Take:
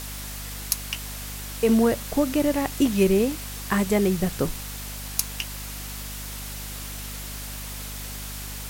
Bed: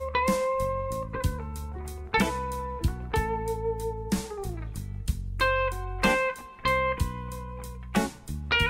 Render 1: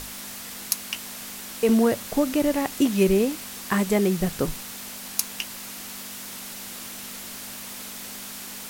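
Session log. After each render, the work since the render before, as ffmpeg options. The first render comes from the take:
ffmpeg -i in.wav -af "bandreject=frequency=50:width_type=h:width=6,bandreject=frequency=100:width_type=h:width=6,bandreject=frequency=150:width_type=h:width=6" out.wav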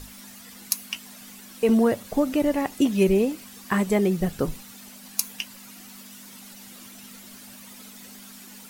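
ffmpeg -i in.wav -af "afftdn=noise_reduction=11:noise_floor=-38" out.wav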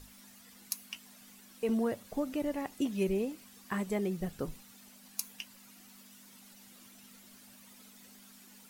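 ffmpeg -i in.wav -af "volume=-11.5dB" out.wav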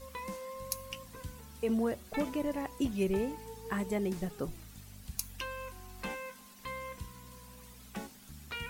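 ffmpeg -i in.wav -i bed.wav -filter_complex "[1:a]volume=-16.5dB[link_01];[0:a][link_01]amix=inputs=2:normalize=0" out.wav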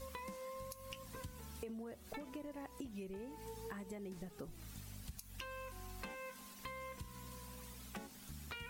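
ffmpeg -i in.wav -af "alimiter=level_in=2.5dB:limit=-24dB:level=0:latency=1:release=249,volume=-2.5dB,acompressor=threshold=-44dB:ratio=12" out.wav

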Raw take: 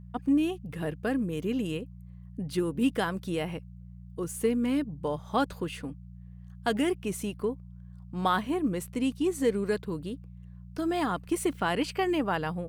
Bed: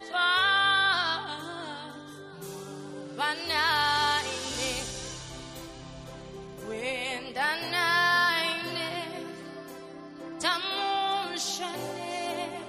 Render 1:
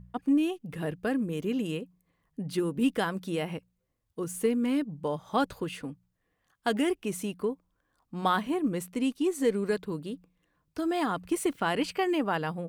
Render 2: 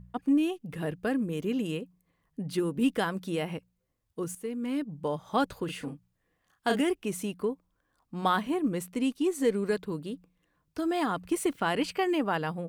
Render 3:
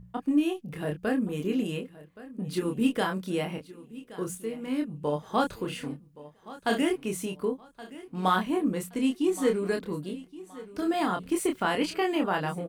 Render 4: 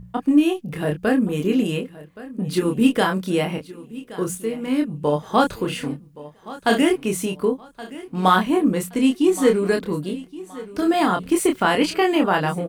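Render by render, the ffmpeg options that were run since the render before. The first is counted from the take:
ffmpeg -i in.wav -af "bandreject=frequency=60:width_type=h:width=4,bandreject=frequency=120:width_type=h:width=4,bandreject=frequency=180:width_type=h:width=4" out.wav
ffmpeg -i in.wav -filter_complex "[0:a]asettb=1/sr,asplit=3[link_01][link_02][link_03];[link_01]atrim=end=5.654[link_04];[link_02]atrim=start=5.65:end=6.81,asetpts=PTS-STARTPTS,afade=type=in:duration=0.004:curve=qsin,afade=type=out:start_time=1.156:duration=0.004:curve=qsin,asplit=2[link_05][link_06];[link_06]adelay=35,volume=-5dB[link_07];[link_05][link_07]amix=inputs=2:normalize=0,atrim=end_sample=51156[link_08];[link_03]atrim=start=6.806[link_09];[link_04][link_08]acrossfade=duration=0.004:curve1=hsin:curve2=qsin[link_10];[link_10][link_09]acrossfade=duration=0.004:curve1=qsin:curve2=hsin,asplit=2[link_11][link_12];[link_11]atrim=end=4.35,asetpts=PTS-STARTPTS,afade=type=out:start_time=4.346:duration=0.004:curve=hsin:silence=0.199526[link_13];[link_12]atrim=start=4.35,asetpts=PTS-STARTPTS,afade=type=in:duration=0.67:silence=0.199526[link_14];[link_13][link_14]concat=n=2:v=0:a=1" out.wav
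ffmpeg -i in.wav -filter_complex "[0:a]asplit=2[link_01][link_02];[link_02]adelay=27,volume=-4dB[link_03];[link_01][link_03]amix=inputs=2:normalize=0,aecho=1:1:1122|2244|3366:0.126|0.039|0.0121" out.wav
ffmpeg -i in.wav -af "volume=8.5dB" out.wav

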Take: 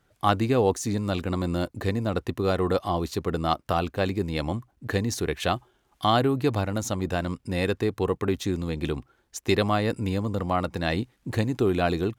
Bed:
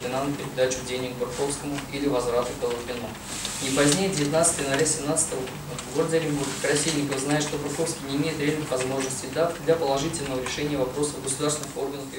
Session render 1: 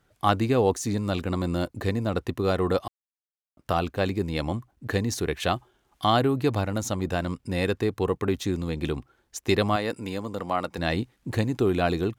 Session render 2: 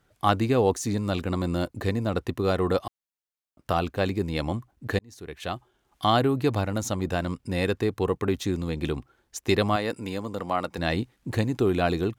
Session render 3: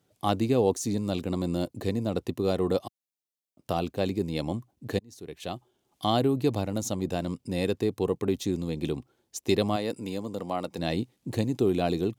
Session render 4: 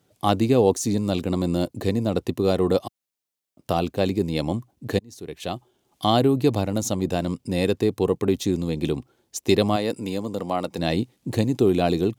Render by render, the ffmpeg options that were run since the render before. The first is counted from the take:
ffmpeg -i in.wav -filter_complex "[0:a]asettb=1/sr,asplit=3[link_01][link_02][link_03];[link_01]atrim=end=9.764[link_04];[link_02]atrim=start=9.76:end=10.78,asetpts=PTS-STARTPTS,afade=type=in:duration=0.004:curve=qsin,afade=type=out:start_time=1.016:duration=0.004:curve=qsin,highpass=frequency=340:poles=1[link_05];[link_03]atrim=start=10.776[link_06];[link_04][link_05]acrossfade=duration=0.004:curve1=hsin:curve2=qsin[link_07];[link_07][link_06]acrossfade=duration=0.004:curve1=qsin:curve2=hsin,asplit=3[link_08][link_09][link_10];[link_08]atrim=end=2.88,asetpts=PTS-STARTPTS,afade=type=out:start_time=2.876:duration=0.004:curve=hsin[link_11];[link_09]atrim=start=2.88:end=3.57,asetpts=PTS-STARTPTS,volume=0[link_12];[link_10]atrim=start=3.57,asetpts=PTS-STARTPTS,afade=type=in:duration=0.004:curve=hsin[link_13];[link_11][link_12][link_13]concat=n=3:v=0:a=1" out.wav
ffmpeg -i in.wav -filter_complex "[0:a]asplit=2[link_01][link_02];[link_01]atrim=end=4.99,asetpts=PTS-STARTPTS,afade=type=out:start_time=4.986:duration=0.004:curve=hsin[link_03];[link_02]atrim=start=4.99,asetpts=PTS-STARTPTS,afade=type=in:duration=1.08[link_04];[link_03][link_04]concat=n=2:v=0:a=1" out.wav
ffmpeg -i in.wav -af "highpass=120,equalizer=frequency=1500:width=1:gain=-11.5" out.wav
ffmpeg -i in.wav -af "volume=5.5dB" out.wav

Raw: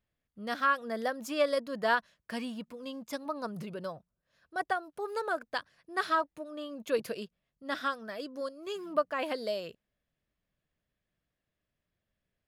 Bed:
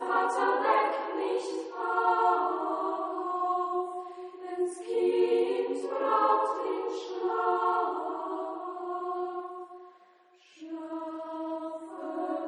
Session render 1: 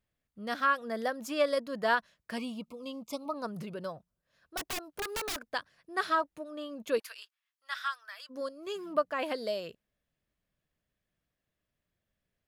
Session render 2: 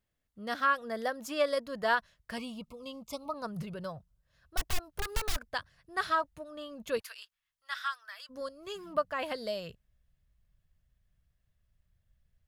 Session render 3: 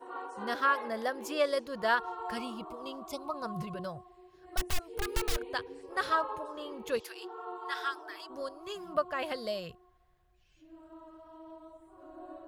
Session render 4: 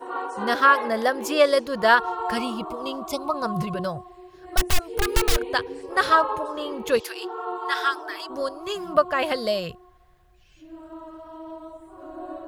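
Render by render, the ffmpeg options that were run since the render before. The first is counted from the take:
ffmpeg -i in.wav -filter_complex "[0:a]asettb=1/sr,asplit=3[link_01][link_02][link_03];[link_01]atrim=end=2.384[link_04];[link_02]atrim=start=2.38:end=3.34,asetpts=PTS-STARTPTS,afade=type=in:duration=0.004:curve=qsin,afade=type=out:start_time=0.956:duration=0.004:curve=qsin,asuperstop=centerf=1700:order=20:qfactor=2.2[link_05];[link_03]atrim=start=3.336[link_06];[link_04][link_05]acrossfade=duration=0.004:curve1=hsin:curve2=qsin[link_07];[link_07][link_06]acrossfade=duration=0.004:curve1=qsin:curve2=hsin,asettb=1/sr,asplit=3[link_08][link_09][link_10];[link_08]atrim=end=4.574[link_11];[link_09]atrim=start=4.57:end=5.38,asetpts=PTS-STARTPTS,afade=type=in:duration=0.004:curve=qsin,afade=type=out:start_time=0.806:duration=0.004:curve=qsin,aeval=exprs='(mod(31.6*val(0)+1,2)-1)/31.6':channel_layout=same[link_12];[link_10]atrim=start=5.376[link_13];[link_11][link_12]acrossfade=duration=0.004:curve1=hsin:curve2=qsin[link_14];[link_14][link_13]acrossfade=duration=0.004:curve1=qsin:curve2=hsin,asplit=3[link_15][link_16][link_17];[link_15]afade=type=out:start_time=6.98:duration=0.02[link_18];[link_16]highpass=frequency=1100:width=0.5412,highpass=frequency=1100:width=1.3066,afade=type=in:start_time=6.98:duration=0.02,afade=type=out:start_time=8.29:duration=0.02[link_19];[link_17]afade=type=in:start_time=8.29:duration=0.02[link_20];[link_18][link_19][link_20]amix=inputs=3:normalize=0" out.wav
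ffmpeg -i in.wav -af "asubboost=boost=11.5:cutoff=89,bandreject=frequency=2400:width=22" out.wav
ffmpeg -i in.wav -i bed.wav -filter_complex "[1:a]volume=-14.5dB[link_01];[0:a][link_01]amix=inputs=2:normalize=0" out.wav
ffmpeg -i in.wav -af "volume=11dB" out.wav

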